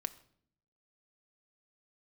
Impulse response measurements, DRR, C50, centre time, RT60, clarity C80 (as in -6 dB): 10.0 dB, 17.0 dB, 3 ms, 0.60 s, 19.5 dB